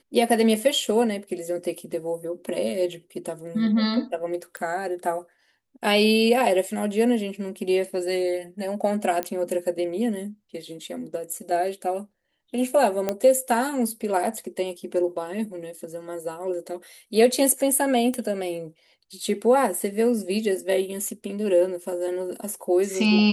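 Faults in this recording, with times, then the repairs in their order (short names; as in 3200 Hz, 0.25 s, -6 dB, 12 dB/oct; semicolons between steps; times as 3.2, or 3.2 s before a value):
4.57 pop -18 dBFS
9.23 pop -11 dBFS
13.09 pop -10 dBFS
18.14 pop -15 dBFS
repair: de-click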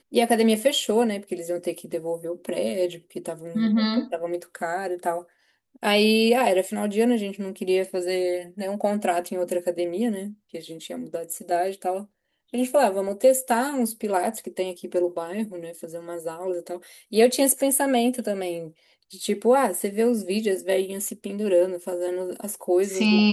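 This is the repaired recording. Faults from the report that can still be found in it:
none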